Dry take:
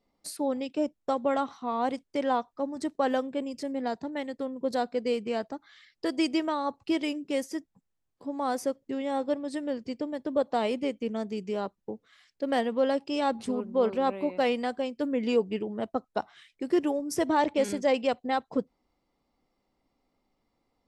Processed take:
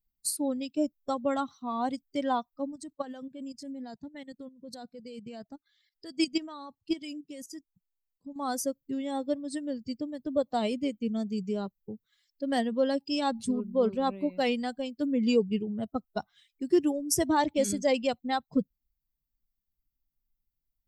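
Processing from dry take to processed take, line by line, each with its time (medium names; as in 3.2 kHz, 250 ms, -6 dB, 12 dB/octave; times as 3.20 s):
2.72–8.36 s: level held to a coarse grid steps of 12 dB
whole clip: expander on every frequency bin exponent 1.5; tone controls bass +10 dB, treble +12 dB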